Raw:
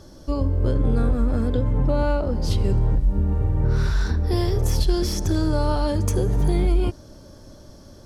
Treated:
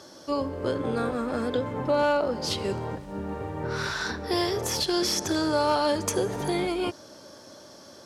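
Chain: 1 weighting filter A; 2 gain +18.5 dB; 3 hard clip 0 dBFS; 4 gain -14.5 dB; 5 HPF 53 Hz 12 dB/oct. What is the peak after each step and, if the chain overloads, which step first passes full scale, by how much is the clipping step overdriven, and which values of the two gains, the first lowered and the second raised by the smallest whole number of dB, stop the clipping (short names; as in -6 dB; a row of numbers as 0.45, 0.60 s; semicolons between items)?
-15.0, +3.5, 0.0, -14.5, -13.5 dBFS; step 2, 3.5 dB; step 2 +14.5 dB, step 4 -10.5 dB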